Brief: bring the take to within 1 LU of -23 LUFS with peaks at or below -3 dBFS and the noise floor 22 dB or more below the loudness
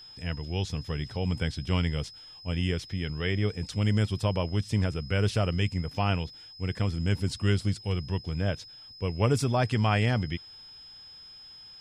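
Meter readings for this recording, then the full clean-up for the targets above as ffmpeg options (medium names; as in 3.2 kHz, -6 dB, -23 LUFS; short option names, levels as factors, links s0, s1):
steady tone 5.1 kHz; tone level -46 dBFS; loudness -29.0 LUFS; peak level -12.0 dBFS; loudness target -23.0 LUFS
-> -af "bandreject=f=5100:w=30"
-af "volume=2"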